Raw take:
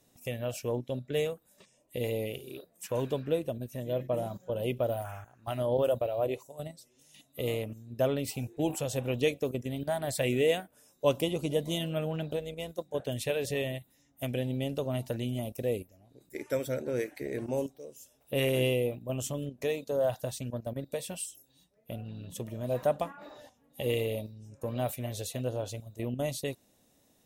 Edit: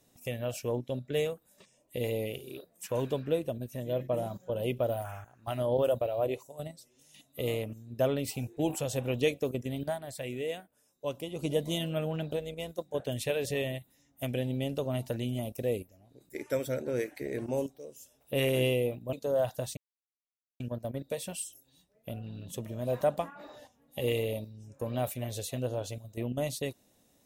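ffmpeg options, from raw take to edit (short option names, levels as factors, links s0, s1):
-filter_complex "[0:a]asplit=5[s0][s1][s2][s3][s4];[s0]atrim=end=10,asetpts=PTS-STARTPTS,afade=t=out:st=9.87:d=0.13:silence=0.354813[s5];[s1]atrim=start=10:end=11.32,asetpts=PTS-STARTPTS,volume=0.355[s6];[s2]atrim=start=11.32:end=19.132,asetpts=PTS-STARTPTS,afade=t=in:d=0.13:silence=0.354813[s7];[s3]atrim=start=19.778:end=20.42,asetpts=PTS-STARTPTS,afade=t=out:st=0.638:d=0.004:c=hsin,apad=pad_dur=0.83[s8];[s4]atrim=start=20.42,asetpts=PTS-STARTPTS,afade=t=in:d=0.004:c=hsin[s9];[s5][s6][s7]concat=n=3:v=0:a=1[s10];[s8][s9]concat=n=2:v=0:a=1[s11];[s10][s11]acrossfade=d=0.004:c1=hsin:c2=hsin"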